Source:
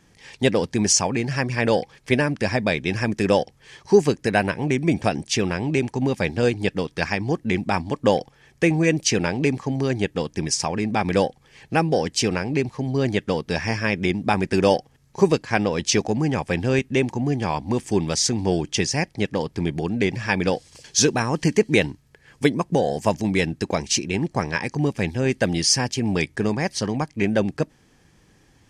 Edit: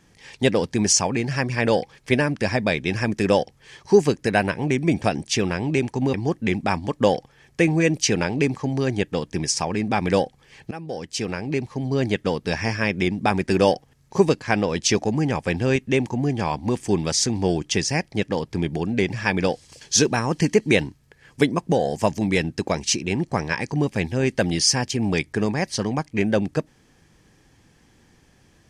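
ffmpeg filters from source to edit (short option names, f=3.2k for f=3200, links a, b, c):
-filter_complex "[0:a]asplit=3[a][b][c];[a]atrim=end=6.142[d];[b]atrim=start=7.168:end=11.74,asetpts=PTS-STARTPTS,afade=t=out:st=4.568:d=0.004:c=hsin:silence=0.11885[e];[c]atrim=start=11.74,asetpts=PTS-STARTPTS,afade=t=in:d=1.61:c=qsin:silence=0.11885[f];[e][f]concat=n=2:v=0:a=1[g];[d][g]acrossfade=d=0.004:c1=hsin:c2=hsin"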